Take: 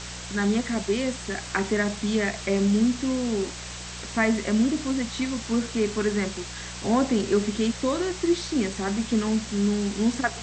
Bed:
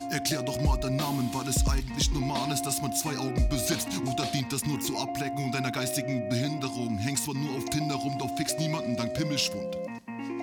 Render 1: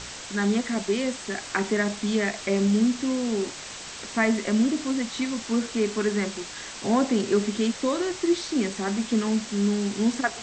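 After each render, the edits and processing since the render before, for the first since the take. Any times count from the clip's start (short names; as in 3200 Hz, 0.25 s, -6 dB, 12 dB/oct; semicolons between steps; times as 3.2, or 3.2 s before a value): de-hum 60 Hz, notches 3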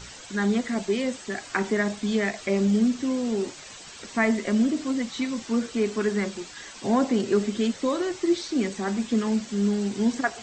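denoiser 9 dB, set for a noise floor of -39 dBFS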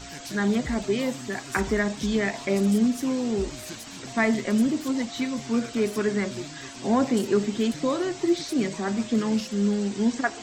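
add bed -11.5 dB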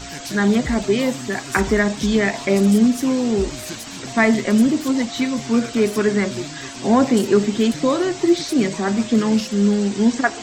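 gain +7 dB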